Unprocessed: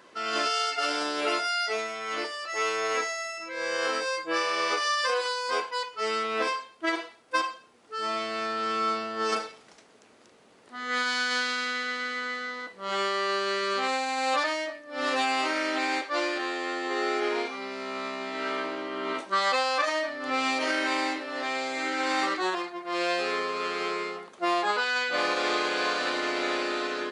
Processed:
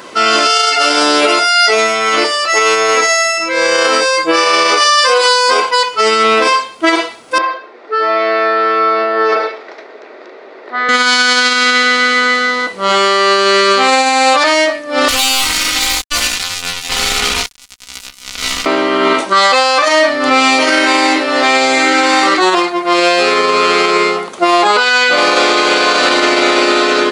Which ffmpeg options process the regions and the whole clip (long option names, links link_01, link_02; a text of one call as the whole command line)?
ffmpeg -i in.wav -filter_complex "[0:a]asettb=1/sr,asplit=3[link_01][link_02][link_03];[link_01]atrim=end=7.384[link_04];[link_02]atrim=start=7.38:end=10.89,asetpts=PTS-STARTPTS,afade=type=in:duration=0.004:curve=qsin,afade=type=out:start_time=3.506:duration=0.004:curve=qsin,acompressor=threshold=-33dB:ratio=3:attack=3.2:release=140:knee=1:detection=peak,highpass=frequency=320:width=0.5412,highpass=frequency=320:width=1.3066,equalizer=frequency=380:width_type=q:width=4:gain=7,equalizer=frequency=620:width_type=q:width=4:gain=6,equalizer=frequency=1800:width_type=q:width=4:gain=7,equalizer=frequency=3000:width_type=q:width=4:gain=-10,lowpass=frequency=3700:width=0.5412,lowpass=frequency=3700:width=1.3066[link_05];[link_03]atrim=start=10.886[link_06];[link_04][link_05]acrossfade=duration=0.004:curve1=hsin:curve2=qsin[link_07];[link_07][link_06]acrossfade=duration=0.004:curve1=qsin:curve2=hsin,asettb=1/sr,asplit=3[link_08][link_09][link_10];[link_08]atrim=end=15.084[link_11];[link_09]atrim=start=15.08:end=18.66,asetpts=PTS-STARTPTS,afade=type=in:duration=0.004:curve=qsin,afade=type=out:start_time=3.576:duration=0.004:curve=qsin,acrusher=bits=3:mix=0:aa=0.5,equalizer=frequency=450:width=0.38:gain=-14,aecho=1:1:4.1:0.72,atrim=end_sample=157878[link_12];[link_10]atrim=start=18.656[link_13];[link_11][link_12]acrossfade=duration=0.004:curve1=hsin:curve2=qsin[link_14];[link_14][link_13]acrossfade=duration=0.004:curve1=qsin:curve2=hsin,highshelf=frequency=6400:gain=5,bandreject=frequency=1700:width=11,alimiter=level_in=22dB:limit=-1dB:release=50:level=0:latency=1,volume=-1dB" out.wav